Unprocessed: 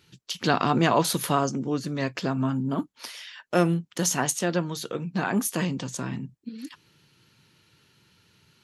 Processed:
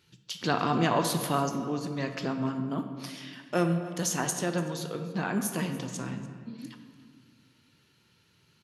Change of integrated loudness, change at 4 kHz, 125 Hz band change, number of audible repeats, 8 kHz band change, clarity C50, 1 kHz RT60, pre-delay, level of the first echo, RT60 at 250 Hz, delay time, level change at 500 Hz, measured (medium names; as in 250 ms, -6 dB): -4.0 dB, -4.5 dB, -4.0 dB, 1, -4.5 dB, 7.5 dB, 1.8 s, 17 ms, -19.5 dB, 2.3 s, 291 ms, -4.0 dB